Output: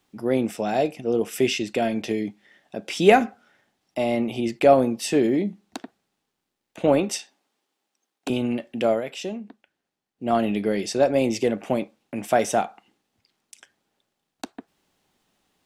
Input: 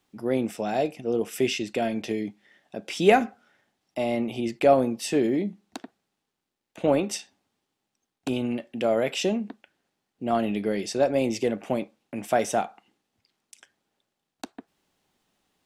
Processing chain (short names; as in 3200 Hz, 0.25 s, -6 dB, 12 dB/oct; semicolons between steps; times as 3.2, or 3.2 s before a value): 7.09–8.3 HPF 310 Hz 12 dB/oct; 8.9–10.29 dip -9 dB, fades 0.12 s; gain +3 dB